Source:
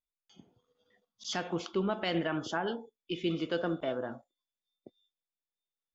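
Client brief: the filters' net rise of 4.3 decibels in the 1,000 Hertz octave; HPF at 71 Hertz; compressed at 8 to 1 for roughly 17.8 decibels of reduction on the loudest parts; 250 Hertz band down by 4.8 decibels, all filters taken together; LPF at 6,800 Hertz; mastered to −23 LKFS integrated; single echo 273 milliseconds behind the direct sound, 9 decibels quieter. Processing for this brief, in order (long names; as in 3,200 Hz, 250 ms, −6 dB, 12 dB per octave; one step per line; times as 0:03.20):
high-pass filter 71 Hz
low-pass filter 6,800 Hz
parametric band 250 Hz −8.5 dB
parametric band 1,000 Hz +6.5 dB
downward compressor 8 to 1, threshold −46 dBFS
single-tap delay 273 ms −9 dB
level +26.5 dB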